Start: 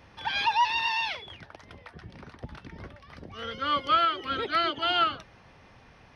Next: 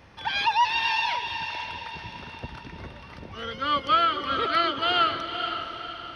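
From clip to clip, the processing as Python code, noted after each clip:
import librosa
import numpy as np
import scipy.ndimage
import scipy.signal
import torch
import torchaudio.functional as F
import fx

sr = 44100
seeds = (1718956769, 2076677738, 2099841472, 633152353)

y = fx.echo_diffused(x, sr, ms=504, feedback_pct=46, wet_db=-7)
y = y * librosa.db_to_amplitude(2.0)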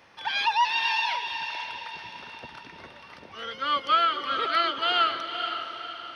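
y = fx.highpass(x, sr, hz=580.0, slope=6)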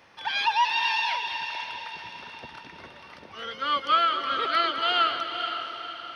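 y = x + 10.0 ** (-12.0 / 20.0) * np.pad(x, (int(208 * sr / 1000.0), 0))[:len(x)]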